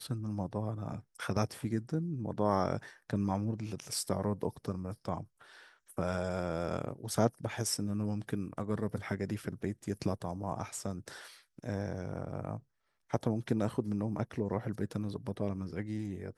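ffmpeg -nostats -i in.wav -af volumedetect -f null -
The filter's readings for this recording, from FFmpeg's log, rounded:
mean_volume: -35.8 dB
max_volume: -13.0 dB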